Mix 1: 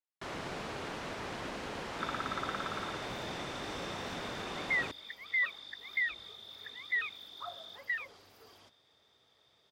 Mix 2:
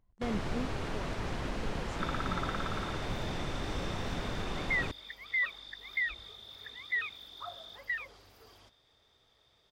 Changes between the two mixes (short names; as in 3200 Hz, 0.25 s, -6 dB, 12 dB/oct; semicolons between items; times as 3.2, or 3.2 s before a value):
speech: unmuted; first sound: remove HPF 330 Hz 6 dB/oct; second sound: remove HPF 120 Hz 12 dB/oct